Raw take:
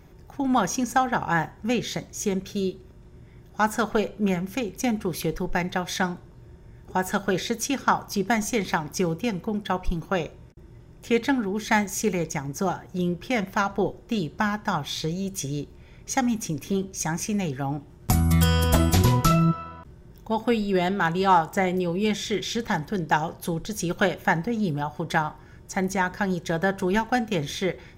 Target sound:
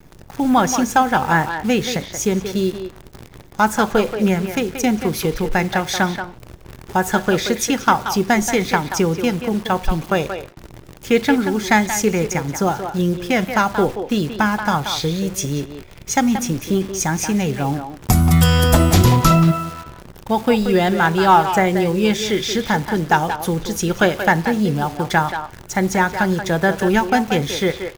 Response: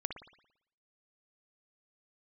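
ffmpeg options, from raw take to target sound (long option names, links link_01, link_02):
-filter_complex "[0:a]acontrast=45,acrusher=bits=7:dc=4:mix=0:aa=0.000001,asplit=2[link_01][link_02];[link_02]adelay=180,highpass=300,lowpass=3400,asoftclip=type=hard:threshold=-11.5dB,volume=-7dB[link_03];[link_01][link_03]amix=inputs=2:normalize=0,volume=1.5dB"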